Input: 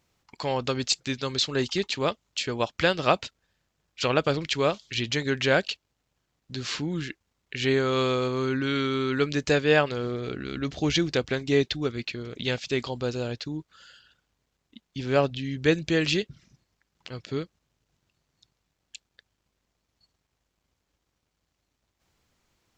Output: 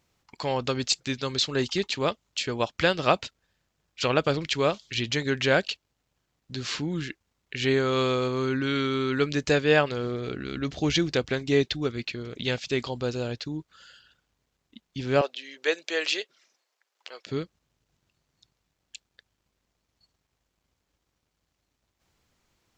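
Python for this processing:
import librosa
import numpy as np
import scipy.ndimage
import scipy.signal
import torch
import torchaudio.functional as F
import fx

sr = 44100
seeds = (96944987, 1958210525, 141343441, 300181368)

y = fx.highpass(x, sr, hz=470.0, slope=24, at=(15.21, 17.26))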